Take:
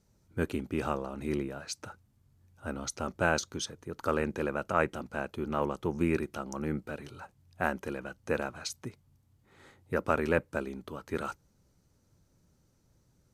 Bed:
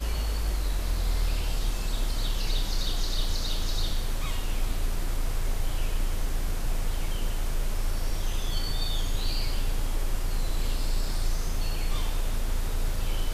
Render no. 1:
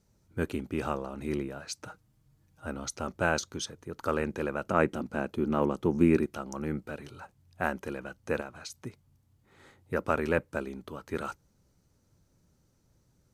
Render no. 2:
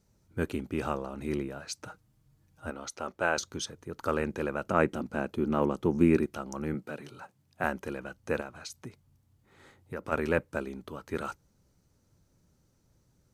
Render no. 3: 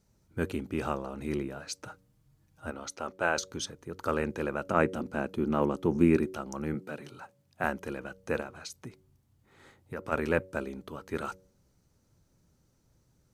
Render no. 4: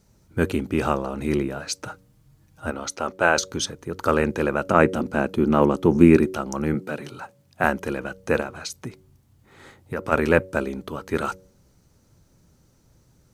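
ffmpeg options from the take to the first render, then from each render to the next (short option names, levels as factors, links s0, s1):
-filter_complex "[0:a]asettb=1/sr,asplit=3[s0][s1][s2];[s0]atrim=end=1.874[s3];[s1]atrim=start=1.87:end=2.66,asetpts=PTS-STARTPTS,afade=t=in:d=0.004:c=qsin,afade=t=out:st=0.786:d=0.004:c=qsin,aecho=1:1:6.4:0.74,atrim=end_sample=34839[s4];[s2]atrim=start=2.656[s5];[s3][s4]acrossfade=d=0.004:c1=hsin:c2=qsin[s6];[s6][s5]acrossfade=d=0.004:c1=qsin:c2=hsin,asettb=1/sr,asplit=3[s7][s8][s9];[s7]atrim=end=4.664[s10];[s8]atrim=start=4.66:end=6.26,asetpts=PTS-STARTPTS,afade=t=in:d=0.004:c=qsin,afade=t=out:st=1.596:d=0.004:c=qsin,equalizer=f=250:w=0.82:g=7.5[s11];[s9]atrim=start=6.256[s12];[s10][s11]acrossfade=d=0.004:c1=hsin:c2=qsin[s13];[s13][s12]acrossfade=d=0.004:c1=qsin:c2=hsin,asettb=1/sr,asplit=3[s14][s15][s16];[s14]atrim=end=8.414[s17];[s15]atrim=start=8.41:end=8.85,asetpts=PTS-STARTPTS,afade=t=in:d=0.004:c=qsin,afade=t=out:st=0.436:d=0.004:c=qsin,acompressor=threshold=0.00501:ratio=1.5:attack=3.2:release=140:knee=1:detection=peak[s18];[s16]atrim=start=8.846[s19];[s17][s18]acrossfade=d=0.004:c1=hsin:c2=qsin[s20];[s20][s19]acrossfade=d=0.004:c1=qsin:c2=hsin"
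-filter_complex "[0:a]asettb=1/sr,asplit=3[s0][s1][s2];[s0]atrim=end=2.704[s3];[s1]atrim=start=2.7:end=3.38,asetpts=PTS-STARTPTS,afade=t=in:d=0.004:c=qsin,afade=t=out:st=0.676:d=0.004:c=qsin,bass=f=250:g=-12,treble=f=4000:g=-5[s4];[s2]atrim=start=3.376[s5];[s3][s4]acrossfade=d=0.004:c1=hsin:c2=qsin[s6];[s6][s5]acrossfade=d=0.004:c1=qsin:c2=hsin,asettb=1/sr,asplit=3[s7][s8][s9];[s7]atrim=end=6.744[s10];[s8]atrim=start=6.74:end=7.64,asetpts=PTS-STARTPTS,afade=t=in:d=0.004:c=qsin,afade=t=out:st=0.896:d=0.004:c=qsin,highpass=f=120:w=0.5412,highpass=f=120:w=1.3066[s11];[s9]atrim=start=7.636[s12];[s10][s11]acrossfade=d=0.004:c1=hsin:c2=qsin[s13];[s13][s12]acrossfade=d=0.004:c1=qsin:c2=hsin,asplit=3[s14][s15][s16];[s14]afade=t=out:st=8.84:d=0.02[s17];[s15]acompressor=threshold=0.0126:ratio=2:attack=3.2:release=140:knee=1:detection=peak,afade=t=in:st=8.84:d=0.02,afade=t=out:st=10.11:d=0.02[s18];[s16]afade=t=in:st=10.11:d=0.02[s19];[s17][s18][s19]amix=inputs=3:normalize=0"
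-af "bandreject=f=94.05:t=h:w=4,bandreject=f=188.1:t=h:w=4,bandreject=f=282.15:t=h:w=4,bandreject=f=376.2:t=h:w=4,bandreject=f=470.25:t=h:w=4,bandreject=f=564.3:t=h:w=4"
-af "volume=2.99,alimiter=limit=0.891:level=0:latency=1"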